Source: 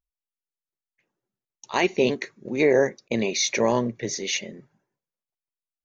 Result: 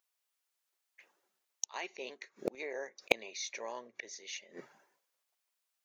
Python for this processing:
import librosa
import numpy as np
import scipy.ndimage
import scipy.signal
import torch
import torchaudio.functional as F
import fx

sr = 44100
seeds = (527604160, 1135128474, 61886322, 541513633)

p1 = scipy.signal.sosfilt(scipy.signal.butter(2, 630.0, 'highpass', fs=sr, output='sos'), x)
p2 = fx.gate_flip(p1, sr, shuts_db=-31.0, range_db=-28)
p3 = fx.quant_dither(p2, sr, seeds[0], bits=6, dither='none')
p4 = p2 + (p3 * librosa.db_to_amplitude(-11.0))
y = p4 * librosa.db_to_amplitude(11.5)